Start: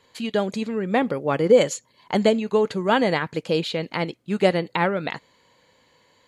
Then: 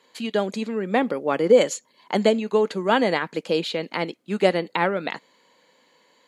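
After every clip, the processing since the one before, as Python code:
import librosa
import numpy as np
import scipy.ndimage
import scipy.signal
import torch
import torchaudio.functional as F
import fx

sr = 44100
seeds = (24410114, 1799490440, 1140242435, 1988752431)

y = scipy.signal.sosfilt(scipy.signal.butter(4, 190.0, 'highpass', fs=sr, output='sos'), x)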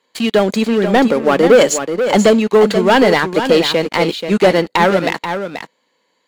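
y = fx.leveller(x, sr, passes=3)
y = y + 10.0 ** (-8.5 / 20.0) * np.pad(y, (int(483 * sr / 1000.0), 0))[:len(y)]
y = F.gain(torch.from_numpy(y), 1.0).numpy()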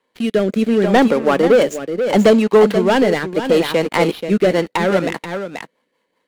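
y = scipy.signal.medfilt(x, 9)
y = fx.rotary_switch(y, sr, hz=0.7, then_hz=5.0, switch_at_s=4.2)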